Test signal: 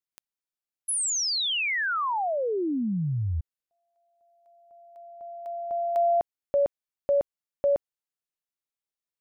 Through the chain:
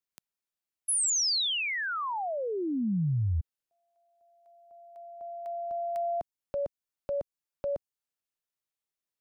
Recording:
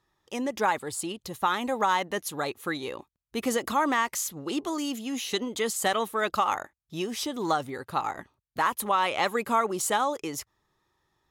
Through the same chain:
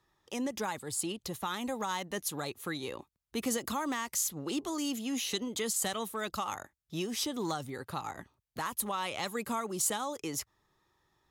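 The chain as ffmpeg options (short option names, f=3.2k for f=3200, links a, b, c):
-filter_complex "[0:a]acrossover=split=210|4000[a][b][c];[b]acompressor=threshold=-33dB:ratio=2.5:attack=0.22:release=682:knee=2.83:detection=peak[d];[a][d][c]amix=inputs=3:normalize=0"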